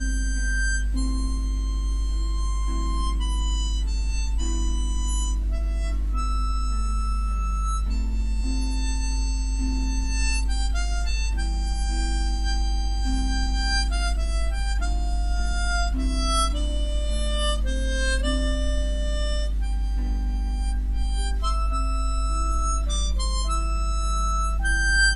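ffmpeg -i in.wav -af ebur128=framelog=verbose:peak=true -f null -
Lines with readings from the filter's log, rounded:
Integrated loudness:
  I:         -26.4 LUFS
  Threshold: -36.4 LUFS
Loudness range:
  LRA:         1.9 LU
  Threshold: -46.6 LUFS
  LRA low:   -27.3 LUFS
  LRA high:  -25.5 LUFS
True peak:
  Peak:       -8.4 dBFS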